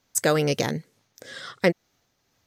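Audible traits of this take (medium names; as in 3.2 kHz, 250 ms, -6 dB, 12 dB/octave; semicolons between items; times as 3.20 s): tremolo triangle 2.2 Hz, depth 40%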